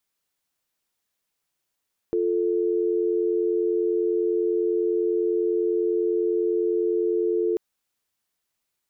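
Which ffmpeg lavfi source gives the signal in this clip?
-f lavfi -i "aevalsrc='0.0708*(sin(2*PI*350*t)+sin(2*PI*440*t))':d=5.44:s=44100"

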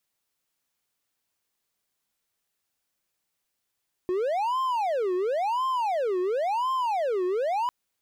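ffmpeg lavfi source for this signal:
-f lavfi -i "aevalsrc='0.0841*(1-4*abs(mod((705*t-345/(2*PI*0.95)*sin(2*PI*0.95*t))+0.25,1)-0.5))':d=3.6:s=44100"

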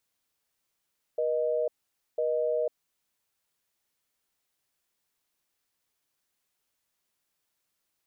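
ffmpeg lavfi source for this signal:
-f lavfi -i "aevalsrc='0.0422*(sin(2*PI*480*t)+sin(2*PI*620*t))*clip(min(mod(t,1),0.5-mod(t,1))/0.005,0,1)':d=1.6:s=44100"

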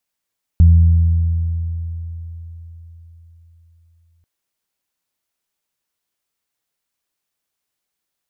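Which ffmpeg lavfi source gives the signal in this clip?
-f lavfi -i "aevalsrc='0.596*pow(10,-3*t/4.27)*sin(2*PI*83.7*t)+0.133*pow(10,-3*t/2.82)*sin(2*PI*167.4*t)':d=3.64:s=44100"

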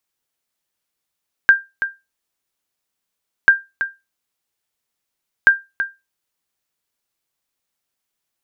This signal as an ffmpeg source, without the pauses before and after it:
-f lavfi -i "aevalsrc='0.841*(sin(2*PI*1590*mod(t,1.99))*exp(-6.91*mod(t,1.99)/0.22)+0.282*sin(2*PI*1590*max(mod(t,1.99)-0.33,0))*exp(-6.91*max(mod(t,1.99)-0.33,0)/0.22))':d=5.97:s=44100"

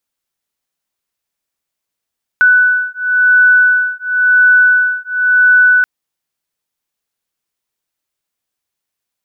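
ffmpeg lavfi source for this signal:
-f lavfi -i "aevalsrc='0.299*(sin(2*PI*1490*t)+sin(2*PI*1490.95*t))':d=3.43:s=44100"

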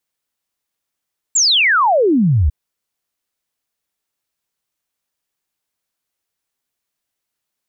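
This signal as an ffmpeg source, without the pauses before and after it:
-f lavfi -i "aevalsrc='0.316*clip(min(t,1.15-t)/0.01,0,1)*sin(2*PI*7700*1.15/log(65/7700)*(exp(log(65/7700)*t/1.15)-1))':d=1.15:s=44100"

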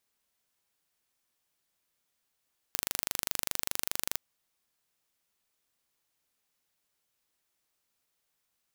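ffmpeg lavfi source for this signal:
-f lavfi -i "aevalsrc='0.708*eq(mod(n,1771),0)':d=1.41:s=44100"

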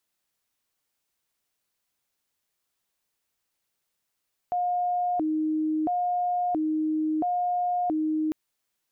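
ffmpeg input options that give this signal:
-f lavfi -i "aevalsrc='0.0708*sin(2*PI*(512.5*t+201.5/0.74*(0.5-abs(mod(0.74*t,1)-0.5))))':d=3.8:s=44100"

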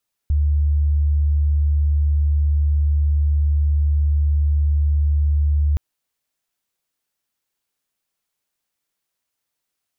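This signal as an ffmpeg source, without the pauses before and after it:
-f lavfi -i "sine=f=73.6:d=5.47:r=44100,volume=4.06dB"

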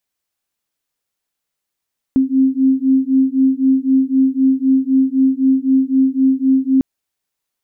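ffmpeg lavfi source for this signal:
-f lavfi -i "aevalsrc='0.2*(sin(2*PI*263*t)+sin(2*PI*266.9*t))':d=4.65:s=44100"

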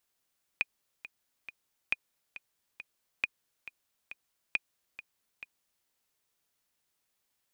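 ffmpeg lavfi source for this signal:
-f lavfi -i "aevalsrc='pow(10,(-14-15.5*gte(mod(t,3*60/137),60/137))/20)*sin(2*PI*2460*mod(t,60/137))*exp(-6.91*mod(t,60/137)/0.03)':d=5.25:s=44100"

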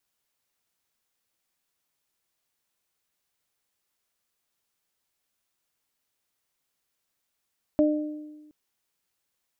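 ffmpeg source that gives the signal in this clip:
-f lavfi -i "aevalsrc='0.133*pow(10,-3*t/1.29)*sin(2*PI*302*t)+0.106*pow(10,-3*t/0.77)*sin(2*PI*604*t)':d=0.72:s=44100"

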